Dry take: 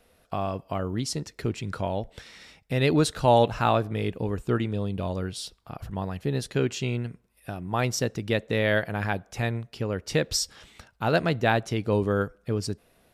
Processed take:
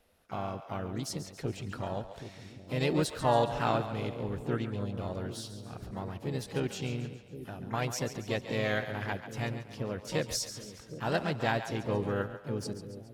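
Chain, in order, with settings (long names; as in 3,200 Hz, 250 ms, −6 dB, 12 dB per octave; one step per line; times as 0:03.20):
pitch-shifted copies added +3 semitones −7 dB, +12 semitones −16 dB
echo with a time of its own for lows and highs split 470 Hz, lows 769 ms, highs 139 ms, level −11 dB
level −8 dB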